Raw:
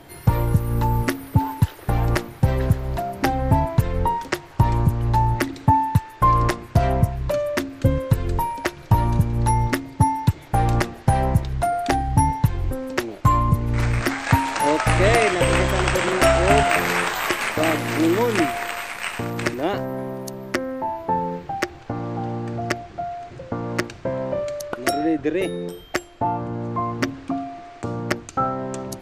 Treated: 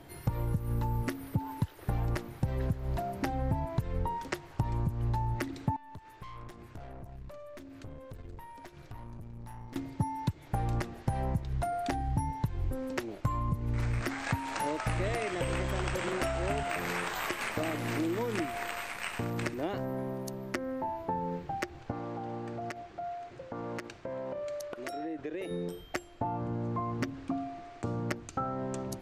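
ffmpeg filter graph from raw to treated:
-filter_complex "[0:a]asettb=1/sr,asplit=3[s0][s1][s2];[s0]atrim=end=5.764[s3];[s1]atrim=start=5.76:end=9.76,asetpts=PTS-STARTPTS,afade=t=in:d=0.004:c=qsin,afade=t=out:st=3.996:d=0.004:c=qsin,aeval=exprs='(tanh(11.2*val(0)+0.7)-tanh(0.7))/11.2':c=same,acompressor=threshold=0.0141:ratio=5:attack=3.2:release=140:knee=1:detection=peak[s4];[s2]atrim=start=9.756[s5];[s3][s4]acrossfade=d=0.004:c1=hsin:c2=qsin[s6];[s6][s5]acrossfade=d=0.004:c1=qsin:c2=hsin,asettb=1/sr,asplit=3[s7][s8][s9];[s7]atrim=end=21.914[s10];[s8]atrim=start=21.91:end=25.51,asetpts=PTS-STARTPTS,afade=t=in:d=0.004:c=qsin,afade=t=out:st=3.596:d=0.004:c=qsin,bass=f=250:g=-10,treble=f=4000:g=-2,acompressor=threshold=0.0501:ratio=10:attack=3.2:release=140:knee=1:detection=peak[s11];[s9]atrim=start=25.506[s12];[s10][s11]acrossfade=d=0.004:c1=hsin:c2=qsin[s13];[s13][s12]acrossfade=d=0.004:c1=qsin:c2=hsin,acompressor=threshold=0.0794:ratio=6,lowshelf=f=340:g=4,volume=0.376"

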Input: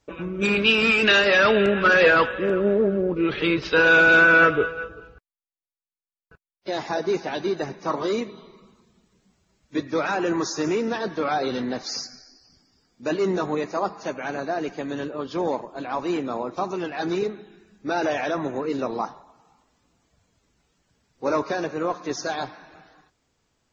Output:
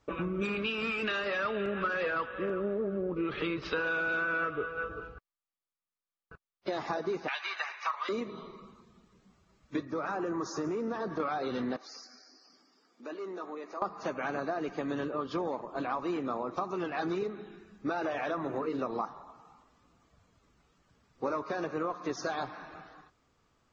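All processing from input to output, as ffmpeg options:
-filter_complex "[0:a]asettb=1/sr,asplit=3[s0][s1][s2];[s0]atrim=end=7.284[s3];[s1]atrim=start=7.28:end=8.09,asetpts=PTS-STARTPTS,afade=t=in:d=0.004:c=qsin,afade=t=out:st=0.806:d=0.004:c=qsin,highpass=f=900:w=0.5412,highpass=f=900:w=1.3066,equalizer=f=2400:w=1.3:g=13[s4];[s2]atrim=start=8.086[s5];[s3][s4]acrossfade=d=0.004:c1=hsin:c2=qsin[s6];[s6][s5]acrossfade=d=0.004:c1=qsin:c2=hsin,asettb=1/sr,asplit=3[s7][s8][s9];[s7]atrim=end=9.854[s10];[s8]atrim=start=9.85:end=11.2,asetpts=PTS-STARTPTS,afade=t=in:d=0.004:c=qsin,afade=t=out:st=1.346:d=0.004:c=qsin,acompressor=threshold=0.0282:ratio=2:attack=3.2:release=140:knee=1:detection=peak,equalizer=f=3000:w=0.85:g=-9[s11];[s9]atrim=start=11.196[s12];[s10][s11]acrossfade=d=0.004:c1=hsin:c2=qsin[s13];[s13][s12]acrossfade=d=0.004:c1=qsin:c2=hsin,asettb=1/sr,asplit=3[s14][s15][s16];[s14]atrim=end=11.764[s17];[s15]atrim=start=11.76:end=13.82,asetpts=PTS-STARTPTS,afade=t=in:d=0.004:c=qsin,afade=t=out:st=2.056:d=0.004:c=qsin,highpass=f=260:w=0.5412,highpass=f=260:w=1.3066,acompressor=threshold=0.00251:ratio=2:attack=3.2:release=140:knee=1:detection=peak[s18];[s16]atrim=start=13.816[s19];[s17][s18]acrossfade=d=0.004:c1=hsin:c2=qsin[s20];[s20][s19]acrossfade=d=0.004:c1=qsin:c2=hsin,asettb=1/sr,asplit=3[s21][s22][s23];[s21]atrim=end=17.904[s24];[s22]atrim=start=17.9:end=18.81,asetpts=PTS-STARTPTS,afade=t=in:d=0.004:c=qsin,afade=t=out:st=0.906:d=0.004:c=qsin,lowpass=6000,bandreject=f=50:t=h:w=6,bandreject=f=100:t=h:w=6,bandreject=f=150:t=h:w=6,bandreject=f=200:t=h:w=6,bandreject=f=250:t=h:w=6,bandreject=f=300:t=h:w=6,bandreject=f=350:t=h:w=6,bandreject=f=400:t=h:w=6,bandreject=f=450:t=h:w=6,aeval=exprs='sgn(val(0))*max(abs(val(0))-0.00119,0)':c=same[s25];[s23]atrim=start=18.806[s26];[s24][s25]acrossfade=d=0.004:c1=hsin:c2=qsin[s27];[s27][s26]acrossfade=d=0.004:c1=qsin:c2=hsin,equalizer=f=1200:t=o:w=0.24:g=9,acompressor=threshold=0.0316:ratio=8,aemphasis=mode=reproduction:type=cd"

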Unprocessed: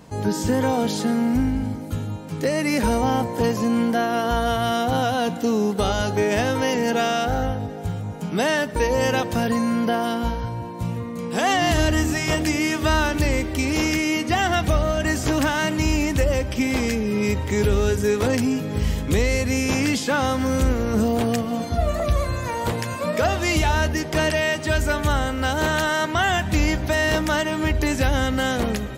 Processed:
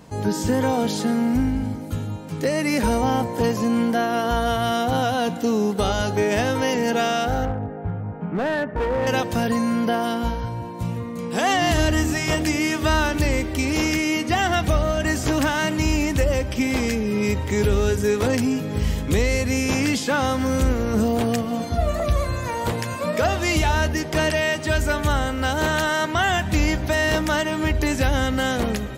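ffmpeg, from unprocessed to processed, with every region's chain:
-filter_complex "[0:a]asettb=1/sr,asplit=3[s0][s1][s2];[s0]atrim=end=7.454[s3];[s1]atrim=start=7.45:end=9.07,asetpts=PTS-STARTPTS,afade=t=in:d=0.004:c=qsin,afade=t=out:st=1.616:d=0.004:c=qsin,lowpass=f=1900:w=0.5412,lowpass=f=1900:w=1.3066,volume=8.91,asoftclip=hard,volume=0.112[s4];[s2]atrim=start=9.066[s5];[s3][s4]acrossfade=d=0.004:c1=hsin:c2=qsin[s6];[s6][s5]acrossfade=d=0.004:c1=qsin:c2=hsin"

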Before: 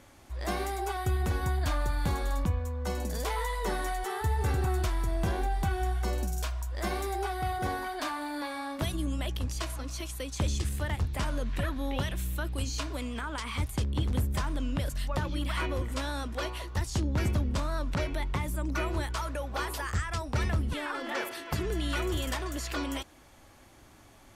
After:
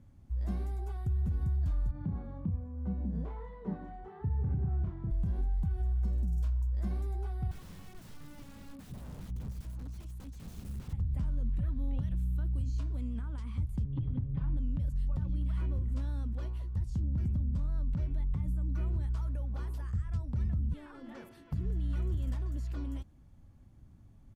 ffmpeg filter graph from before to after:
-filter_complex "[0:a]asettb=1/sr,asplit=3[s0][s1][s2];[s0]atrim=end=1.914[s3];[s1]atrim=start=1.91:end=5.11,asetpts=PTS-STARTPTS,afade=t=in:d=0.004:c=qsin,afade=t=out:st=3.196:d=0.004:c=qsin,highpass=130,lowpass=2300,tiltshelf=f=920:g=4,asplit=2[s4][s5];[s5]adelay=31,volume=0.631[s6];[s4][s6]amix=inputs=2:normalize=0,atrim=end_sample=141120[s7];[s2]atrim=start=5.106[s8];[s3][s7]acrossfade=d=0.004:c1=hsin:c2=qsin[s9];[s9][s8]acrossfade=d=0.004:c1=qsin:c2=hsin,asettb=1/sr,asplit=3[s10][s11][s12];[s10]atrim=end=7.514[s13];[s11]atrim=start=7.51:end=10.93,asetpts=PTS-STARTPTS,afade=t=in:d=0.004:c=qsin,afade=t=out:st=3.416:d=0.004:c=qsin,highpass=f=99:p=1,aeval=exprs='(mod(42.2*val(0)+1,2)-1)/42.2':c=same[s14];[s12]atrim=start=10.926[s15];[s13][s14]acrossfade=d=0.004:c1=hsin:c2=qsin[s16];[s16][s15]acrossfade=d=0.004:c1=qsin:c2=hsin,asettb=1/sr,asplit=3[s17][s18][s19];[s17]atrim=end=13.844[s20];[s18]atrim=start=13.84:end=14.57,asetpts=PTS-STARTPTS,afade=t=in:d=0.004:c=qsin,afade=t=out:st=0.726:d=0.004:c=qsin,lowpass=f=3400:w=0.5412,lowpass=f=3400:w=1.3066,aecho=1:1:7.3:0.89,atrim=end_sample=32193,bandreject=f=272.7:t=h:w=4,bandreject=f=545.4:t=h:w=4,bandreject=f=818.1:t=h:w=4,bandreject=f=1090.8:t=h:w=4,bandreject=f=1363.5:t=h:w=4,bandreject=f=1636.2:t=h:w=4,bandreject=f=1908.9:t=h:w=4,bandreject=f=2181.6:t=h:w=4,bandreject=f=2454.3:t=h:w=4,bandreject=f=2727:t=h:w=4,bandreject=f=2999.7:t=h:w=4,bandreject=f=3272.4:t=h:w=4,bandreject=f=3545.1:t=h:w=4,bandreject=f=3817.8:t=h:w=4,bandreject=f=4090.5:t=h:w=4,bandreject=f=4363.2:t=h:w=4,bandreject=f=4635.9:t=h:w=4,bandreject=f=4908.6:t=h:w=4,bandreject=f=5181.3:t=h:w=4,bandreject=f=5454:t=h:w=4,bandreject=f=5726.7:t=h:w=4,bandreject=f=5999.4:t=h:w=4,bandreject=f=6272.1:t=h:w=4,bandreject=f=6544.8:t=h:w=4,bandreject=f=6817.5:t=h:w=4,bandreject=f=7090.2:t=h:w=4,bandreject=f=7362.9:t=h:w=4[s21];[s19]atrim=start=14.566[s22];[s20][s21]acrossfade=d=0.004:c1=hsin:c2=qsin[s23];[s23][s22]acrossfade=d=0.004:c1=qsin:c2=hsin,firequalizer=gain_entry='entry(180,0);entry(330,-16);entry(640,-21);entry(2100,-26)':delay=0.05:min_phase=1,alimiter=level_in=1.78:limit=0.0631:level=0:latency=1:release=76,volume=0.562,volume=1.5"

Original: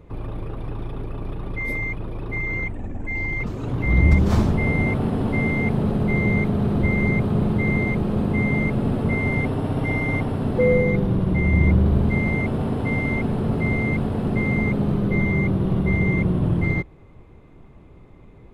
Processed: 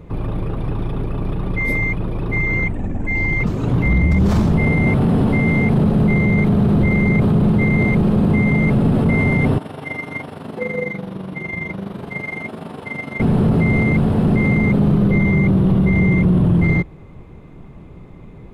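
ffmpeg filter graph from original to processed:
-filter_complex "[0:a]asettb=1/sr,asplit=3[s0][s1][s2];[s0]atrim=end=9.584[s3];[s1]atrim=start=9.58:end=13.2,asetpts=PTS-STARTPTS,afade=t=in:d=0.004:c=qsin,afade=t=out:st=3.616:d=0.004:c=qsin,highpass=f=790:p=1,flanger=delay=18.5:depth=3.2:speed=1,tremolo=f=24:d=0.667[s4];[s2]atrim=start=13.196[s5];[s3][s4]acrossfade=d=0.004:c1=hsin:c2=qsin[s6];[s6][s5]acrossfade=d=0.004:c1=qsin:c2=hsin,equalizer=f=170:t=o:w=0.66:g=6,alimiter=limit=0.188:level=0:latency=1:release=16,volume=2.11"

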